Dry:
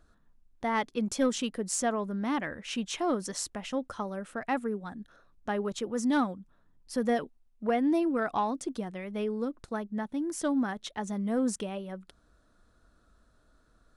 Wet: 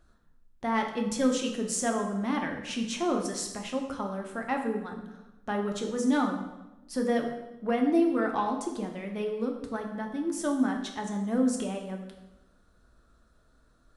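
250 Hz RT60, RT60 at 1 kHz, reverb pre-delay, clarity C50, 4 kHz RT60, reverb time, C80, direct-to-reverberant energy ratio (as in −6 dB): 1.2 s, 0.95 s, 3 ms, 6.5 dB, 0.85 s, 1.0 s, 8.5 dB, 2.0 dB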